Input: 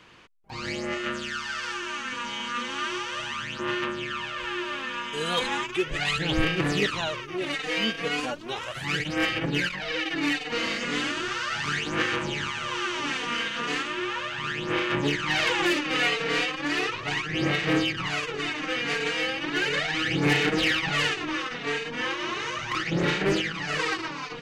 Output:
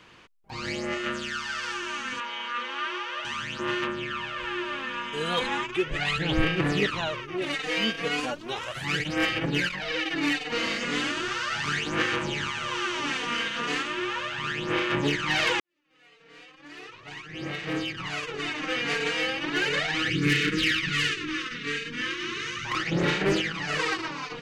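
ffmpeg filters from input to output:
ffmpeg -i in.wav -filter_complex "[0:a]asettb=1/sr,asplit=3[link_01][link_02][link_03];[link_01]atrim=end=2.204[link_04];[link_02]atrim=start=2.2:end=3.25,asetpts=PTS-STARTPTS,afade=type=in:duration=0.004:curve=qsin,afade=type=out:start_time=1.046:duration=0.004:curve=qsin,acrossover=split=330 4000:gain=0.0631 1 0.141[link_05][link_06][link_07];[link_05][link_06][link_07]amix=inputs=3:normalize=0[link_08];[link_03]atrim=start=3.246[link_09];[link_04][link_08]acrossfade=duration=0.004:curve1=hsin:curve2=qsin[link_10];[link_10][link_09]acrossfade=duration=0.004:curve1=qsin:curve2=hsin,asettb=1/sr,asplit=3[link_11][link_12][link_13];[link_11]atrim=end=3.874[link_14];[link_12]atrim=start=3.87:end=7.42,asetpts=PTS-STARTPTS,afade=type=in:duration=0.004:curve=qsin,afade=type=out:start_time=3.546:duration=0.004:curve=qsin,bass=frequency=250:gain=1,treble=frequency=4000:gain=-6[link_15];[link_13]atrim=start=7.416[link_16];[link_14][link_15]acrossfade=duration=0.004:curve1=hsin:curve2=qsin[link_17];[link_17][link_16]acrossfade=duration=0.004:curve1=qsin:curve2=hsin,asettb=1/sr,asplit=3[link_18][link_19][link_20];[link_18]atrim=end=20.104[link_21];[link_19]atrim=start=20.1:end=22.65,asetpts=PTS-STARTPTS,afade=type=in:duration=0.004:curve=qsin,afade=type=out:start_time=2.546:duration=0.004:curve=qsin,asuperstop=centerf=720:order=4:qfactor=0.74[link_22];[link_20]atrim=start=22.646[link_23];[link_21][link_22]acrossfade=duration=0.004:curve1=hsin:curve2=qsin[link_24];[link_24][link_23]acrossfade=duration=0.004:curve1=qsin:curve2=hsin,asplit=2[link_25][link_26];[link_25]atrim=end=15.6,asetpts=PTS-STARTPTS,afade=type=out:start_time=15.596:duration=0.004:curve=hsin[link_27];[link_26]atrim=start=15.6,asetpts=PTS-STARTPTS,afade=type=in:duration=3.13:curve=qua[link_28];[link_27][link_28]concat=n=2:v=0:a=1" out.wav

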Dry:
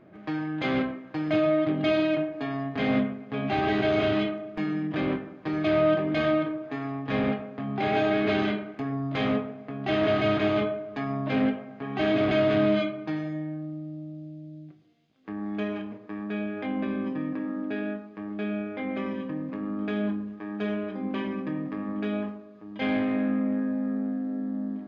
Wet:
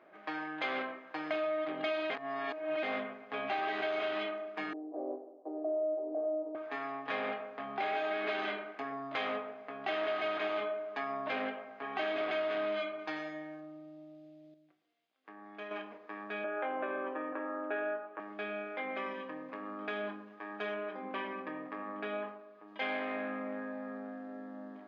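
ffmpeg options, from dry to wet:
ffmpeg -i in.wav -filter_complex "[0:a]asettb=1/sr,asplit=3[link_01][link_02][link_03];[link_01]atrim=end=4.734[link_04];[link_02]atrim=start=4.73:end=6.55,asetpts=PTS-STARTPTS,afade=type=in:duration=0.004:curve=qsin,afade=type=out:start_time=1.816:duration=0.004:curve=qsin,asuperpass=centerf=450:order=8:qfactor=0.96[link_05];[link_03]atrim=start=6.546[link_06];[link_04][link_05]acrossfade=duration=0.004:curve1=hsin:curve2=qsin[link_07];[link_07][link_06]acrossfade=duration=0.004:curve1=qsin:curve2=hsin,asettb=1/sr,asplit=3[link_08][link_09][link_10];[link_08]atrim=end=12.994[link_11];[link_09]atrim=start=12.99:end=13.61,asetpts=PTS-STARTPTS,afade=type=in:duration=0.004:curve=qsin,afade=type=out:start_time=0.616:duration=0.004:curve=qsin,highshelf=frequency=3600:gain=7.5[link_12];[link_10]atrim=start=13.606[link_13];[link_11][link_12]acrossfade=duration=0.004:curve1=hsin:curve2=qsin[link_14];[link_14][link_13]acrossfade=duration=0.004:curve1=qsin:curve2=hsin,asettb=1/sr,asplit=3[link_15][link_16][link_17];[link_15]atrim=end=16.444[link_18];[link_16]atrim=start=16.44:end=18.2,asetpts=PTS-STARTPTS,afade=type=in:duration=0.004:curve=qsin,afade=type=out:start_time=1.756:duration=0.004:curve=qsin,highpass=180,equalizer=frequency=190:width_type=q:width=4:gain=-9,equalizer=frequency=350:width_type=q:width=4:gain=7,equalizer=frequency=570:width_type=q:width=4:gain=9,equalizer=frequency=850:width_type=q:width=4:gain=5,equalizer=frequency=1400:width_type=q:width=4:gain=9,equalizer=frequency=2100:width_type=q:width=4:gain=-4,lowpass=frequency=2900:width=0.5412,lowpass=frequency=2900:width=1.3066[link_19];[link_17]atrim=start=18.196[link_20];[link_18][link_19]acrossfade=duration=0.004:curve1=hsin:curve2=qsin[link_21];[link_21][link_20]acrossfade=duration=0.004:curve1=qsin:curve2=hsin,asettb=1/sr,asplit=3[link_22][link_23][link_24];[link_22]atrim=end=20.744[link_25];[link_23]atrim=start=20.74:end=22.68,asetpts=PTS-STARTPTS,afade=type=in:duration=0.004:curve=qsin,afade=type=out:start_time=1.936:duration=0.004:curve=qsin,aemphasis=mode=reproduction:type=50fm[link_26];[link_24]atrim=start=22.676[link_27];[link_25][link_26]acrossfade=duration=0.004:curve1=hsin:curve2=qsin[link_28];[link_28][link_27]acrossfade=duration=0.004:curve1=qsin:curve2=hsin,asplit=5[link_29][link_30][link_31][link_32][link_33];[link_29]atrim=end=2.102[link_34];[link_30]atrim=start=2.098:end=2.832,asetpts=PTS-STARTPTS,areverse[link_35];[link_31]atrim=start=2.828:end=14.542[link_36];[link_32]atrim=start=14.538:end=15.712,asetpts=PTS-STARTPTS,volume=-7.5dB[link_37];[link_33]atrim=start=15.708[link_38];[link_34][link_35]acrossfade=duration=0.004:curve1=hsin:curve2=hsin[link_39];[link_39][link_36]acrossfade=duration=0.004:curve1=hsin:curve2=hsin[link_40];[link_40][link_37]acrossfade=duration=0.004:curve1=hsin:curve2=hsin[link_41];[link_41][link_38]acrossfade=duration=0.004:curve1=hsin:curve2=hsin,highpass=700,highshelf=frequency=4000:gain=-9.5,acompressor=threshold=-34dB:ratio=4,volume=2dB" out.wav

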